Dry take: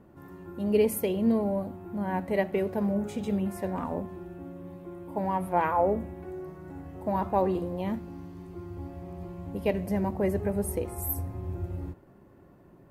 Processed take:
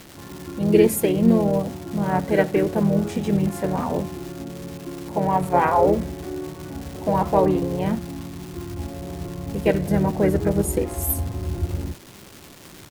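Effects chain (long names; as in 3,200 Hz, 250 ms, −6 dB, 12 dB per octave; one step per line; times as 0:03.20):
surface crackle 470 per second −38 dBFS
pitch-shifted copies added −4 semitones −4 dB
level +6.5 dB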